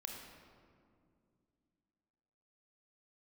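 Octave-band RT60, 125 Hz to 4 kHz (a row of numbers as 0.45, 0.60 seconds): 3.1, 3.4, 2.6, 2.0, 1.6, 1.1 seconds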